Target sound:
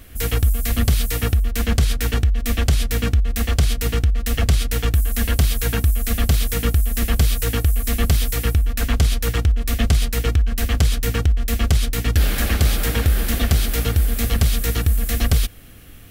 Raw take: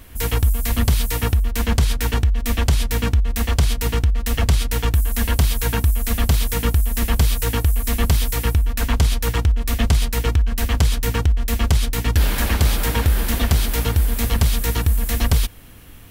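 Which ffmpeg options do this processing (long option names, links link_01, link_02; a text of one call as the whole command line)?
ffmpeg -i in.wav -af "equalizer=frequency=950:width=6.4:gain=-12" out.wav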